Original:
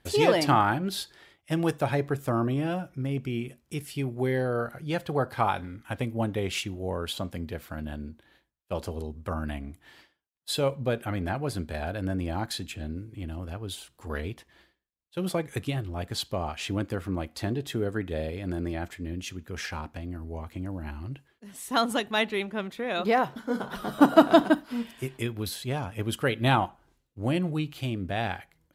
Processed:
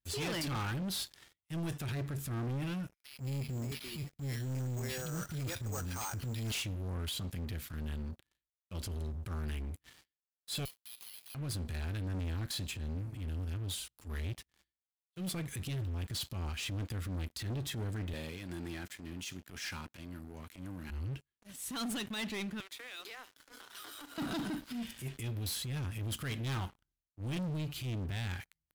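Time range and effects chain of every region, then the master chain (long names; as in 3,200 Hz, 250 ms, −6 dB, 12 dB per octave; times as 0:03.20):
0:02.94–0:06.52: three-band delay without the direct sound highs, lows, mids 230/570 ms, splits 380/2,000 Hz + bad sample-rate conversion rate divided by 6×, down none, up hold
0:10.65–0:11.35: Butterworth high-pass 2,800 Hz 48 dB per octave + downward compressor 3 to 1, threshold −49 dBFS + bad sample-rate conversion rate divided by 6×, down none, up zero stuff
0:18.13–0:20.90: high-pass filter 95 Hz + low-shelf EQ 180 Hz −11.5 dB
0:22.60–0:24.18: Butterworth high-pass 280 Hz 96 dB per octave + parametric band 360 Hz −8.5 dB 2.6 octaves + downward compressor 12 to 1, threshold −36 dBFS
whole clip: guitar amp tone stack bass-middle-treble 6-0-2; transient designer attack −12 dB, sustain +2 dB; leveller curve on the samples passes 5; level −1.5 dB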